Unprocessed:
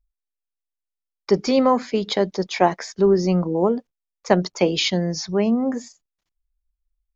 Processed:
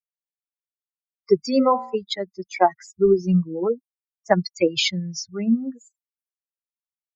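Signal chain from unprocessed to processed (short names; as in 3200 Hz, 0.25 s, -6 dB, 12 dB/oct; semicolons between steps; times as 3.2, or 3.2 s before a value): per-bin expansion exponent 3; 1.4–1.95 de-hum 59.32 Hz, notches 24; gain +4 dB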